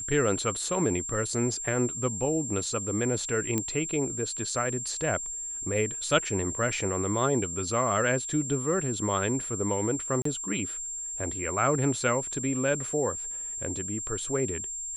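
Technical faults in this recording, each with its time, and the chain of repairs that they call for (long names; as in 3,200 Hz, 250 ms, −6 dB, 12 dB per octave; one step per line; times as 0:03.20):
whistle 7,400 Hz −33 dBFS
0:03.58: click −13 dBFS
0:10.22–0:10.25: drop-out 34 ms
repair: click removal
notch filter 7,400 Hz, Q 30
repair the gap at 0:10.22, 34 ms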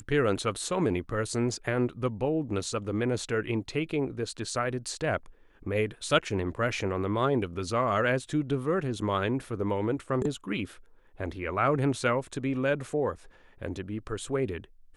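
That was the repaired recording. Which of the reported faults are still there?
none of them is left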